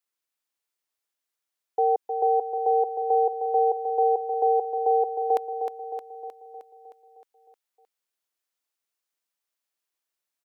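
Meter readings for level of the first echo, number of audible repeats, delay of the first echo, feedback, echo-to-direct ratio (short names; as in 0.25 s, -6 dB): -7.0 dB, 7, 0.31 s, 59%, -5.0 dB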